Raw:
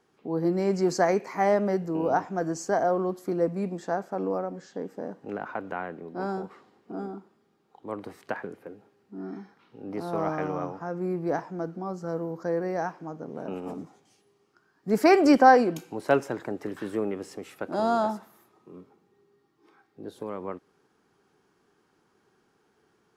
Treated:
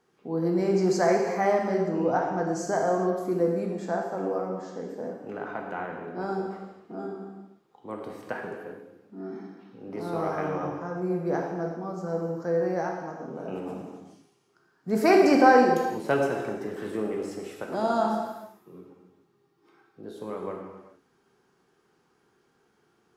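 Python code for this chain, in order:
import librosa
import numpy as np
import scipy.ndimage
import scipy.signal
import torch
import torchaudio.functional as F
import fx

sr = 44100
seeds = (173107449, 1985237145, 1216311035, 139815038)

y = fx.lowpass(x, sr, hz=fx.line((1.54, 10000.0), (2.46, 5600.0)), slope=12, at=(1.54, 2.46), fade=0.02)
y = fx.rev_gated(y, sr, seeds[0], gate_ms=450, shape='falling', drr_db=0.0)
y = y * librosa.db_to_amplitude(-2.5)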